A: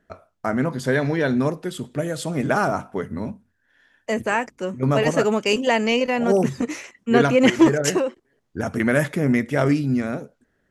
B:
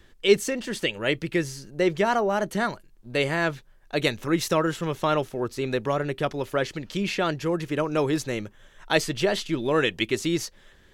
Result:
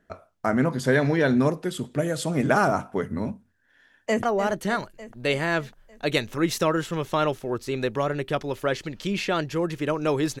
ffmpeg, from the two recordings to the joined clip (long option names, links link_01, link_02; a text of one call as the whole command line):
ffmpeg -i cue0.wav -i cue1.wav -filter_complex "[0:a]apad=whole_dur=10.4,atrim=end=10.4,atrim=end=4.232[link_01];[1:a]atrim=start=2.128:end=8.3[link_02];[link_01][link_02]acrossfade=duration=0.004:curve1=hsin:curve2=hsin,asplit=2[link_03][link_04];[link_04]afade=type=in:start_time=3.79:duration=0.01,afade=type=out:start_time=4.23:duration=0.01,aecho=0:1:300|600|900|1200|1500|1800|2100|2400:0.298538|0.19405|0.126132|0.0819861|0.0532909|0.0346391|0.0225154|0.014635[link_05];[link_03][link_05]amix=inputs=2:normalize=0" out.wav